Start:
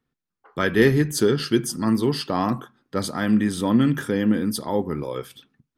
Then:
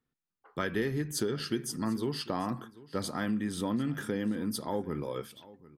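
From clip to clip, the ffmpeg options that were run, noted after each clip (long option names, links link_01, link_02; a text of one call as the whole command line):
ffmpeg -i in.wav -af "acompressor=threshold=-21dB:ratio=6,aecho=1:1:743:0.1,volume=-6.5dB" out.wav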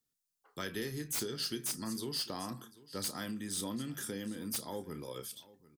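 ffmpeg -i in.wav -filter_complex "[0:a]acrossover=split=380|4300[link_01][link_02][link_03];[link_03]aeval=exprs='0.0708*sin(PI/2*5.01*val(0)/0.0708)':channel_layout=same[link_04];[link_01][link_02][link_04]amix=inputs=3:normalize=0,asplit=2[link_05][link_06];[link_06]adelay=31,volume=-13dB[link_07];[link_05][link_07]amix=inputs=2:normalize=0,volume=-8.5dB" out.wav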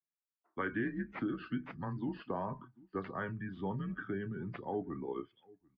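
ffmpeg -i in.wav -af "afftdn=noise_reduction=16:noise_floor=-49,highpass=frequency=270:width_type=q:width=0.5412,highpass=frequency=270:width_type=q:width=1.307,lowpass=frequency=2300:width_type=q:width=0.5176,lowpass=frequency=2300:width_type=q:width=0.7071,lowpass=frequency=2300:width_type=q:width=1.932,afreqshift=-100,volume=5.5dB" out.wav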